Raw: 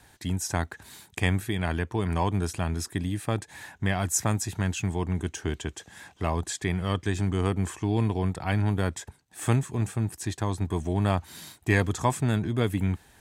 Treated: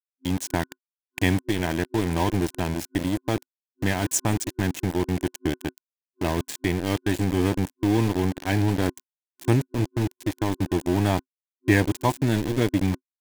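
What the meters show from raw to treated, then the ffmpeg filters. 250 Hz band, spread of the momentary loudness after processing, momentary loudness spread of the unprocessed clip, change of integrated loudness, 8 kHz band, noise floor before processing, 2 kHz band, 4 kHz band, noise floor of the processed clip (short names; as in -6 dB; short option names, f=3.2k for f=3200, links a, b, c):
+5.5 dB, 7 LU, 8 LU, +3.0 dB, +0.5 dB, -59 dBFS, +2.5 dB, +3.5 dB, under -85 dBFS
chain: -af "aeval=exprs='val(0)*gte(abs(val(0)),0.0422)':c=same,superequalizer=6b=2.24:10b=0.501,volume=2dB"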